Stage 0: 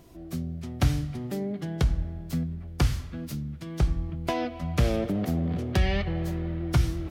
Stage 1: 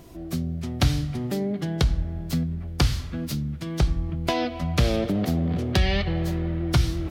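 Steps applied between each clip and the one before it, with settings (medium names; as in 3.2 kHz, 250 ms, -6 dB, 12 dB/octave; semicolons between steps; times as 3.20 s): dynamic bell 4.1 kHz, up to +7 dB, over -53 dBFS, Q 1.4; in parallel at 0 dB: compression, threshold -31 dBFS, peak gain reduction 13.5 dB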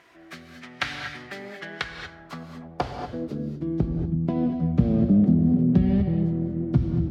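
band-pass sweep 1.8 kHz -> 200 Hz, 1.90–3.99 s; gated-style reverb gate 260 ms rising, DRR 5.5 dB; trim +8.5 dB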